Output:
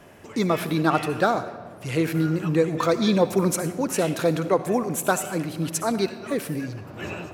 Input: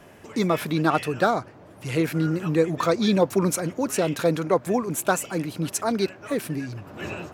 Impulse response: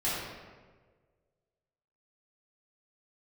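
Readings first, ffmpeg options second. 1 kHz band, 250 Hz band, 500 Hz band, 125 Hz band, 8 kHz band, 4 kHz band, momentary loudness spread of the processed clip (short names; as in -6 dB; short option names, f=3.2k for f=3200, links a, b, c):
+0.5 dB, +0.5 dB, +0.5 dB, +0.5 dB, +0.5 dB, +0.5 dB, 10 LU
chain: -filter_complex "[0:a]asplit=2[a][b];[1:a]atrim=start_sample=2205,highshelf=f=6.6k:g=9.5,adelay=62[c];[b][c]afir=irnorm=-1:irlink=0,volume=-21.5dB[d];[a][d]amix=inputs=2:normalize=0"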